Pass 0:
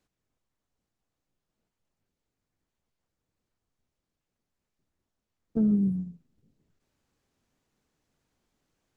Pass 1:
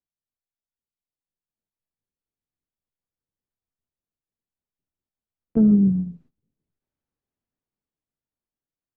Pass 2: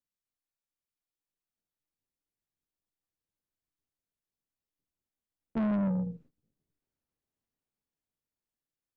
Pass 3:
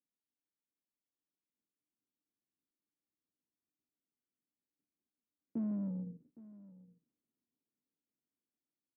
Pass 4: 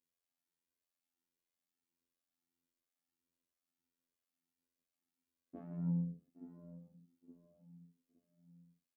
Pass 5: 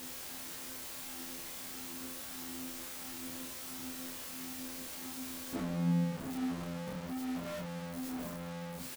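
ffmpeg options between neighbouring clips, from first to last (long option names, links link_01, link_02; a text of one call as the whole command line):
ffmpeg -i in.wav -af "aemphasis=mode=reproduction:type=75kf,agate=range=-20dB:threshold=-59dB:ratio=16:detection=peak,dynaudnorm=framelen=290:gausssize=11:maxgain=8dB" out.wav
ffmpeg -i in.wav -af "tremolo=f=300:d=0.571,asoftclip=type=tanh:threshold=-26.5dB" out.wav
ffmpeg -i in.wav -af "acompressor=threshold=-45dB:ratio=2,bandpass=frequency=270:width_type=q:width=2.3:csg=0,aecho=1:1:813:0.112,volume=5.5dB" out.wav
ffmpeg -i in.wav -filter_complex "[0:a]afftfilt=real='hypot(re,im)*cos(PI*b)':imag='0':win_size=2048:overlap=0.75,asplit=2[link_01][link_02];[link_02]adelay=867,lowpass=frequency=840:poles=1,volume=-11.5dB,asplit=2[link_03][link_04];[link_04]adelay=867,lowpass=frequency=840:poles=1,volume=0.41,asplit=2[link_05][link_06];[link_06]adelay=867,lowpass=frequency=840:poles=1,volume=0.41,asplit=2[link_07][link_08];[link_08]adelay=867,lowpass=frequency=840:poles=1,volume=0.41[link_09];[link_01][link_03][link_05][link_07][link_09]amix=inputs=5:normalize=0,asplit=2[link_10][link_11];[link_11]adelay=9.1,afreqshift=-1.5[link_12];[link_10][link_12]amix=inputs=2:normalize=1,volume=7.5dB" out.wav
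ffmpeg -i in.wav -filter_complex "[0:a]aeval=exprs='val(0)+0.5*0.00794*sgn(val(0))':channel_layout=same,asplit=2[link_01][link_02];[link_02]adelay=27,volume=-2.5dB[link_03];[link_01][link_03]amix=inputs=2:normalize=0,volume=6dB" out.wav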